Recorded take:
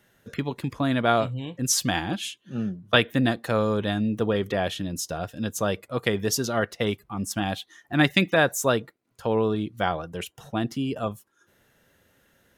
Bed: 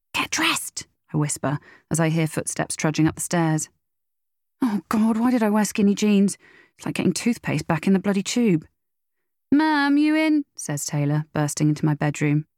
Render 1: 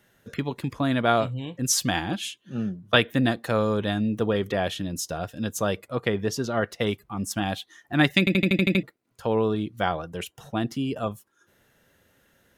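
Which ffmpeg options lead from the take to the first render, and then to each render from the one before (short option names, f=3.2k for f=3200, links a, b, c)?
-filter_complex "[0:a]asettb=1/sr,asplit=3[a][b][c];[a]atrim=end=5.954[d];[b]atrim=start=5.95:end=6.65,asetpts=PTS-STARTPTS,afade=t=in:d=0.004:c=qsin,afade=t=out:st=0.696:d=0.004:c=qsin,lowpass=f=2.6k:p=1[e];[c]atrim=start=6.646[f];[d][e]acrossfade=d=0.004:c1=hsin:c2=qsin[g];[g][f]acrossfade=d=0.004:c1=qsin:c2=hsin,asplit=9[h][i][j][k][l][m][n][o][p];[h]atrim=end=8.272[q];[i]atrim=start=8.188:end=8.272[r];[j]atrim=start=8.188:end=8.272[s];[k]atrim=start=8.188:end=8.272[t];[l]atrim=start=8.188:end=8.272[u];[m]atrim=start=8.188:end=8.272[v];[n]atrim=start=8.188:end=8.272[w];[o]atrim=start=8.188:end=8.272[x];[p]atrim=start=8.828[y];[q][r]acrossfade=d=0.004:c1=hsin:c2=hsin[z];[z][s]acrossfade=d=0.004:c1=hsin:c2=hsin[aa];[aa][t]acrossfade=d=0.004:c1=hsin:c2=hsin[ab];[ab][u]acrossfade=d=0.004:c1=hsin:c2=hsin[ac];[ac][v]acrossfade=d=0.004:c1=hsin:c2=hsin[ad];[ad][w]acrossfade=d=0.004:c1=hsin:c2=hsin[ae];[ae][x]acrossfade=d=0.004:c1=hsin:c2=hsin[af];[af][y]acrossfade=d=0.004:c1=hsin:c2=hsin"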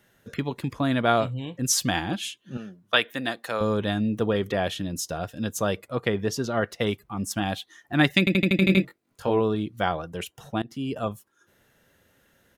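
-filter_complex "[0:a]asettb=1/sr,asplit=3[a][b][c];[a]atrim=end=2.574[d];[b]atrim=start=2.57:end=3.61,asetpts=PTS-STARTPTS,afade=t=in:d=0.004:c=qsin,afade=t=out:st=1.036:d=0.004:c=qsin,highpass=f=770:p=1[e];[c]atrim=start=3.606[f];[d][e]acrossfade=d=0.004:c1=hsin:c2=qsin[g];[g][f]acrossfade=d=0.004:c1=qsin:c2=hsin,asplit=3[h][i][j];[h]afade=t=out:st=8.61:d=0.02[k];[i]asplit=2[l][m];[m]adelay=21,volume=-3dB[n];[l][n]amix=inputs=2:normalize=0,afade=t=in:st=8.61:d=0.02,afade=t=out:st=9.39:d=0.02[o];[j]afade=t=in:st=9.39:d=0.02[p];[k][o][p]amix=inputs=3:normalize=0,asplit=2[q][r];[q]atrim=end=10.62,asetpts=PTS-STARTPTS,afade=t=out:st=10.616:d=0.004:c=hsin:silence=0.0749894[s];[r]atrim=start=10.62,asetpts=PTS-STARTPTS,afade=t=in:d=0.42:c=qsin:silence=0.0749894[t];[s][t]concat=n=2:v=0:a=1"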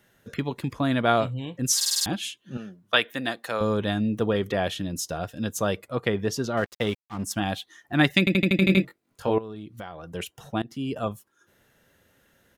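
-filter_complex "[0:a]asettb=1/sr,asplit=3[a][b][c];[a]atrim=end=6.574[d];[b]atrim=start=6.57:end=7.24,asetpts=PTS-STARTPTS,afade=t=in:d=0.004:c=qsin,afade=t=out:st=0.666:d=0.004:c=qsin,aeval=exprs='sgn(val(0))*max(abs(val(0))-0.00841,0)':c=same[e];[c]atrim=start=7.236[f];[d][e]acrossfade=d=0.004:c1=hsin:c2=qsin[g];[g][f]acrossfade=d=0.004:c1=qsin:c2=hsin,asettb=1/sr,asplit=3[h][i][j];[h]atrim=end=9.384[k];[i]atrim=start=9.38:end=10.1,asetpts=PTS-STARTPTS,afade=t=in:d=0.004:c=qsin,afade=t=out:st=0.716:d=0.004:c=qsin,acompressor=threshold=-35dB:ratio=5:attack=3.2:release=140:knee=1:detection=peak[l];[j]atrim=start=10.096[m];[k][l]acrossfade=d=0.004:c1=hsin:c2=qsin[n];[n][m]acrossfade=d=0.004:c1=qsin:c2=hsin,asplit=7[o][p][q][r][s][t][u];[o]atrim=end=1.812[v];[p]atrim=start=1.758:end=1.812[w];[q]atrim=start=1.758:end=1.812[x];[r]atrim=start=1.758:end=1.812[y];[s]atrim=start=1.758:end=1.812[z];[t]atrim=start=1.758:end=1.812[aa];[u]atrim=start=2.058[ab];[v][w]acrossfade=d=0.004:c1=hsin:c2=hsin[ac];[ac][x]acrossfade=d=0.004:c1=hsin:c2=hsin[ad];[ad][y]acrossfade=d=0.004:c1=hsin:c2=hsin[ae];[ae][z]acrossfade=d=0.004:c1=hsin:c2=hsin[af];[af][aa]acrossfade=d=0.004:c1=hsin:c2=hsin[ag];[ag][ab]acrossfade=d=0.004:c1=hsin:c2=hsin"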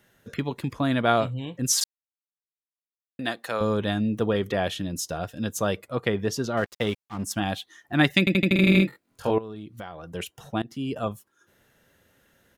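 -filter_complex "[0:a]asettb=1/sr,asplit=3[a][b][c];[a]atrim=end=8.474[d];[b]atrim=start=8.47:end=9.31,asetpts=PTS-STARTPTS,afade=t=in:d=0.004:c=qsin,afade=t=out:st=0.836:d=0.004:c=qsin,asplit=2[e][f];[f]adelay=47,volume=-3.5dB[g];[e][g]amix=inputs=2:normalize=0,atrim=end_sample=37044[h];[c]atrim=start=9.306[i];[d][h]acrossfade=d=0.004:c1=hsin:c2=qsin[j];[j][i]acrossfade=d=0.004:c1=qsin:c2=hsin,asplit=3[k][l][m];[k]atrim=end=1.84,asetpts=PTS-STARTPTS,afade=t=out:st=1.836:d=0.004:c=hsin[n];[l]atrim=start=1.84:end=3.19,asetpts=PTS-STARTPTS,volume=0[o];[m]atrim=start=3.19,asetpts=PTS-STARTPTS,afade=t=in:d=0.004:c=hsin[p];[n][o][p]concat=n=3:v=0:a=1"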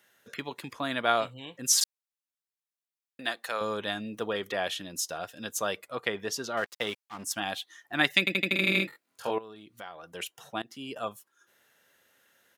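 -af "highpass=f=940:p=1"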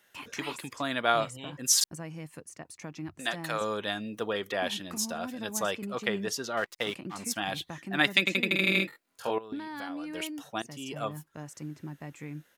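-filter_complex "[1:a]volume=-20dB[a];[0:a][a]amix=inputs=2:normalize=0"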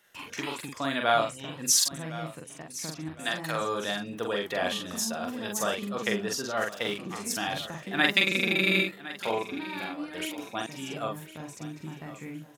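-filter_complex "[0:a]asplit=2[a][b];[b]adelay=44,volume=-3dB[c];[a][c]amix=inputs=2:normalize=0,aecho=1:1:1060|2120|3180:0.168|0.0604|0.0218"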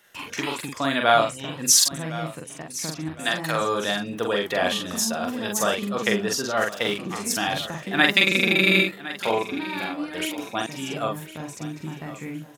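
-af "volume=6dB,alimiter=limit=-3dB:level=0:latency=1"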